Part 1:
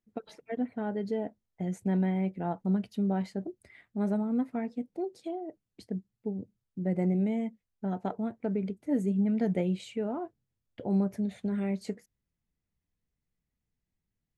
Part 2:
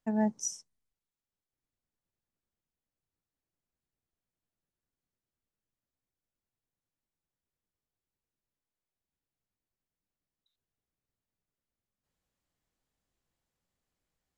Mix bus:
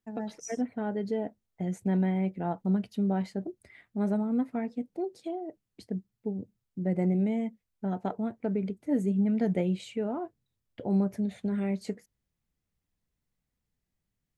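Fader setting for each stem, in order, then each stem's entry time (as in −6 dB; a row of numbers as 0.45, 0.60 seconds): +1.0, −8.5 decibels; 0.00, 0.00 seconds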